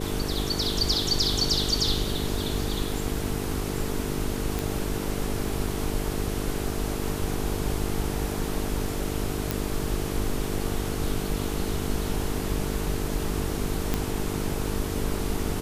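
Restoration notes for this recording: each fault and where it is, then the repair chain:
buzz 50 Hz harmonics 9 -32 dBFS
4.59 pop
9.51 pop
13.94 pop -10 dBFS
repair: de-click; de-hum 50 Hz, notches 9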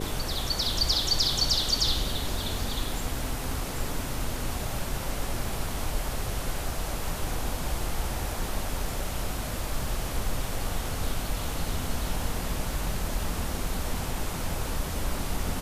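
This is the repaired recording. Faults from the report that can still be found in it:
none

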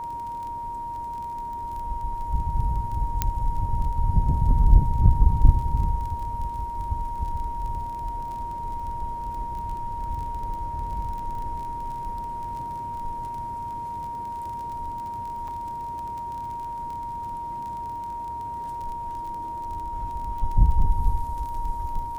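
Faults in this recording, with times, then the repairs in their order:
crackle 25/s -33 dBFS
tone 940 Hz -30 dBFS
3.22 pop -7 dBFS
15.48 gap 4.7 ms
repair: de-click; notch 940 Hz, Q 30; interpolate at 15.48, 4.7 ms

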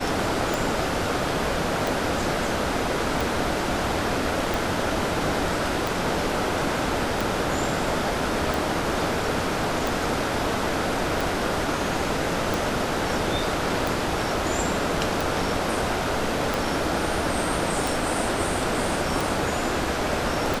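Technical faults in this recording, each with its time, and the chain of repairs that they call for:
tick 45 rpm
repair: de-click

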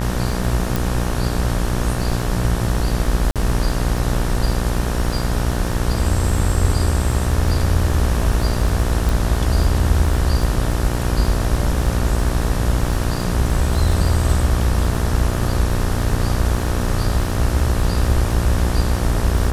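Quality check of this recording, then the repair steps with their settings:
buzz 60 Hz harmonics 31 -22 dBFS
crackle 42/s -26 dBFS
0.76 pop
3.31–3.36 gap 47 ms
9.09 pop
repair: de-click; de-hum 60 Hz, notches 31; interpolate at 3.31, 47 ms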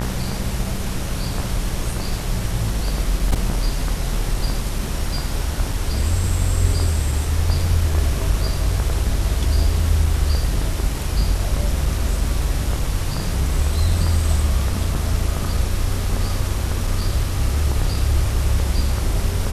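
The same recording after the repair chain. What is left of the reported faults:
0.76 pop
9.09 pop

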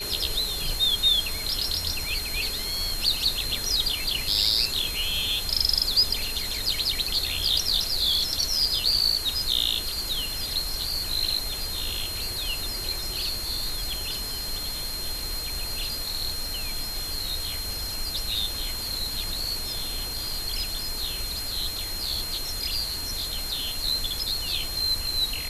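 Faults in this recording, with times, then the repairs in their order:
tone 4200 Hz -32 dBFS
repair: notch 4200 Hz, Q 30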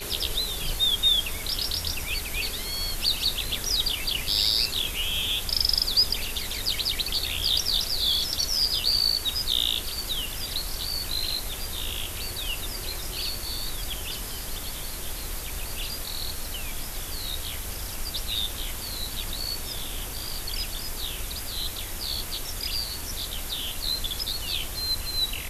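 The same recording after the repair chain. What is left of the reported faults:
none

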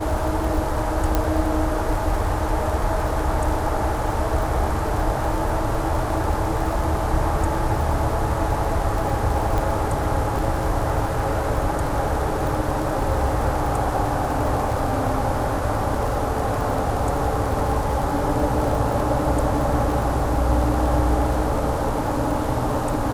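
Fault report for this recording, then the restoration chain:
crackle 40/s -26 dBFS
1.15 pop -6 dBFS
9.58 pop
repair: de-click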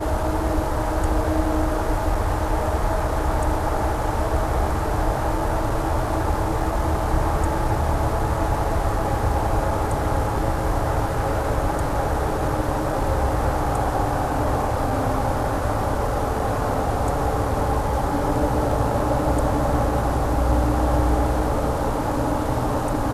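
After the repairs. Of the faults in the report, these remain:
none

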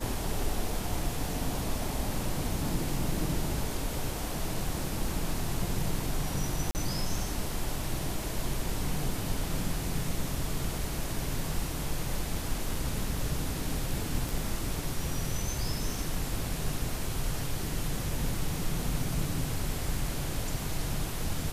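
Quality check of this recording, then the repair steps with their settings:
6.71–6.75 gap 39 ms
14.29 pop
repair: de-click; interpolate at 6.71, 39 ms

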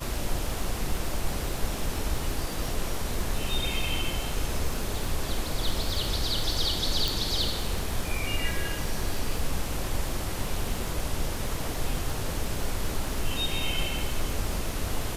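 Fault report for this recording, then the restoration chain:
crackle 43/s -32 dBFS
7.08 pop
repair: de-click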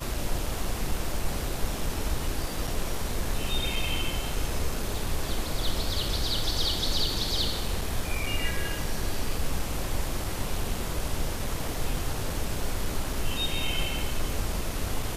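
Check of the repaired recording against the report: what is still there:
none

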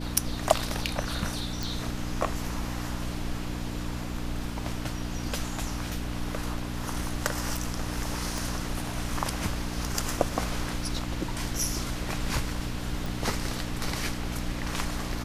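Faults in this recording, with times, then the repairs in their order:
hum 60 Hz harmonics 5 -35 dBFS
1.63 pop
8.38 pop
13.06 pop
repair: de-click; de-hum 60 Hz, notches 5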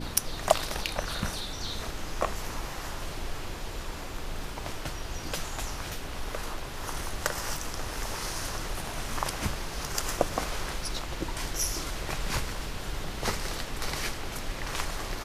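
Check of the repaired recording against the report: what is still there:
8.38 pop

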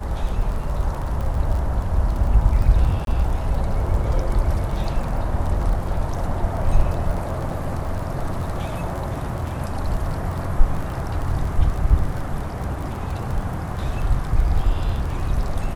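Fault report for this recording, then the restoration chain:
crackle 26/s -27 dBFS
3.05–3.07 gap 22 ms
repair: de-click; interpolate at 3.05, 22 ms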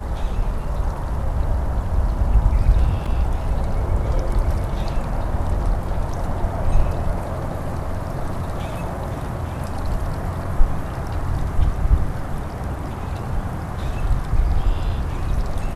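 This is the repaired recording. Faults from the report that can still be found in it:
none

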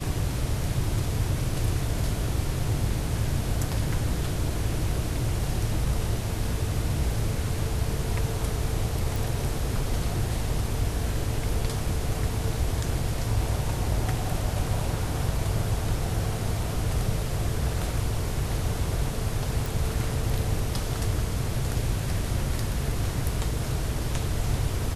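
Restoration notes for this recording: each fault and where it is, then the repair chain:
9.16 pop
19.66 pop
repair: de-click

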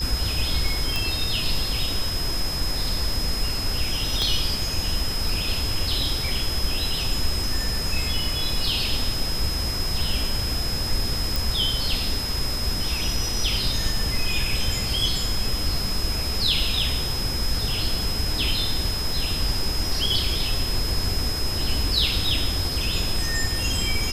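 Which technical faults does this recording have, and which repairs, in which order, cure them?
tone 5100 Hz -28 dBFS
0.96 pop
4.22 pop
11.36 pop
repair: de-click; notch 5100 Hz, Q 30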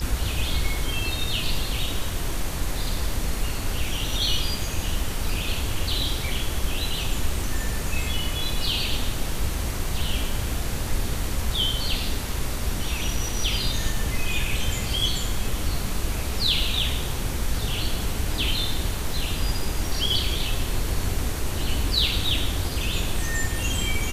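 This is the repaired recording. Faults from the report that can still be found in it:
4.22 pop

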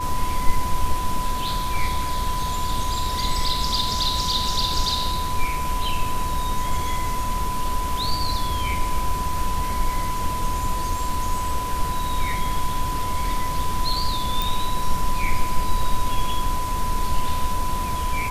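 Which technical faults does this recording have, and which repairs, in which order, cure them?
tone 1000 Hz -26 dBFS
14.42 pop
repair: de-click; notch 1000 Hz, Q 30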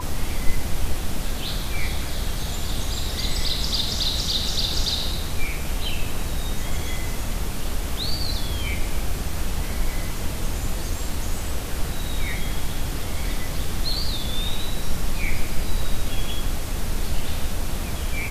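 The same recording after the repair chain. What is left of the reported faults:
none

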